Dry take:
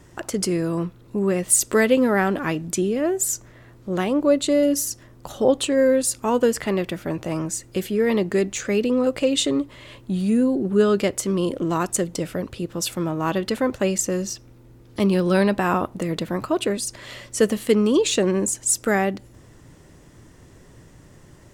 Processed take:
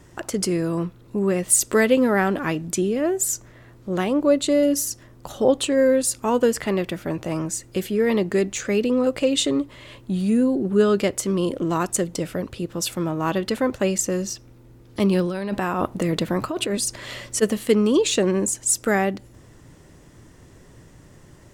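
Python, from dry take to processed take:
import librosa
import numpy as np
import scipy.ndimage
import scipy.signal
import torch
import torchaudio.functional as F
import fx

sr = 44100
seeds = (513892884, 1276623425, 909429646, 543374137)

y = fx.over_compress(x, sr, threshold_db=-24.0, ratio=-1.0, at=(15.22, 17.41), fade=0.02)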